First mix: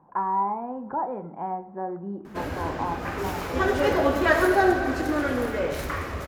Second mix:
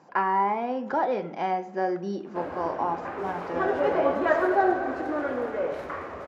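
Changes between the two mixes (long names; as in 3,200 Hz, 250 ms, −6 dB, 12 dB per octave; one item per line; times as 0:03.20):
speech: remove transistor ladder low-pass 1,100 Hz, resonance 55%
master: add resonant band-pass 680 Hz, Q 0.85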